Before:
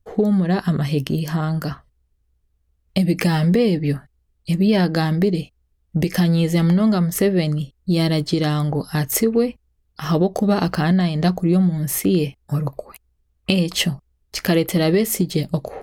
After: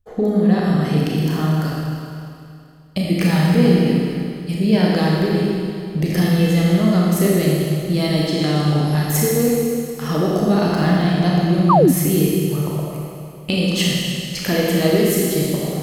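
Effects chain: Schroeder reverb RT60 2.5 s, combs from 26 ms, DRR -4.5 dB; painted sound fall, 11.69–11.92 s, 230–1300 Hz -9 dBFS; trim -3.5 dB

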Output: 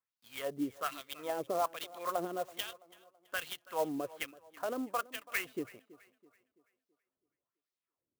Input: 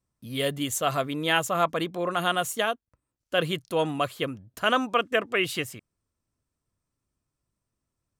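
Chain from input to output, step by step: 1.19–2.25 s: peaking EQ 540 Hz +7 dB 2.5 oct; in parallel at -1 dB: compression, threshold -31 dBFS, peak gain reduction 17 dB; on the sum: peak limiter -12 dBFS, peak gain reduction 8 dB; LFO band-pass sine 1.2 Hz 330–4500 Hz; on a send: tape echo 330 ms, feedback 46%, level -19 dB, low-pass 3.2 kHz; on the sum: sampling jitter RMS 0.034 ms; trim -5 dB

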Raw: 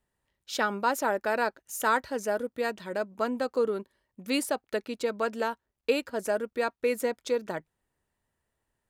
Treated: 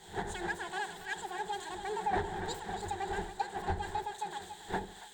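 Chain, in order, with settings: zero-crossing glitches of -19 dBFS; wind noise 550 Hz -31 dBFS; gate -20 dBFS, range -14 dB; rippled EQ curve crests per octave 0.92, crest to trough 17 dB; compression 6:1, threshold -36 dBFS, peak gain reduction 20 dB; power-law waveshaper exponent 0.7; distance through air 210 m; two-band feedback delay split 360 Hz, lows 135 ms, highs 486 ms, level -7.5 dB; speed mistake 45 rpm record played at 78 rpm; three bands expanded up and down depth 100%

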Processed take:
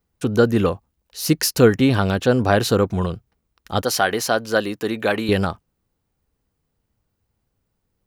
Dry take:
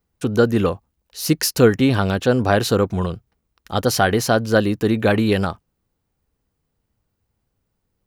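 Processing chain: 3.82–5.29 s: high-pass 500 Hz 6 dB/octave

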